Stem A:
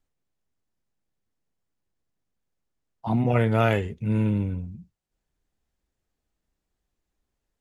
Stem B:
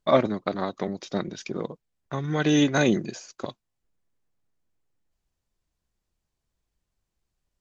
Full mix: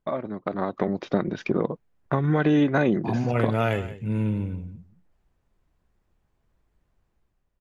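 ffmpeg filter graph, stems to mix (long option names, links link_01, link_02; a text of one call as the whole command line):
ffmpeg -i stem1.wav -i stem2.wav -filter_complex "[0:a]volume=-11.5dB,asplit=2[link_01][link_02];[link_02]volume=-15.5dB[link_03];[1:a]lowpass=1900,acompressor=threshold=-30dB:ratio=4,volume=2dB[link_04];[link_03]aecho=0:1:176:1[link_05];[link_01][link_04][link_05]amix=inputs=3:normalize=0,dynaudnorm=framelen=110:gausssize=11:maxgain=9dB" out.wav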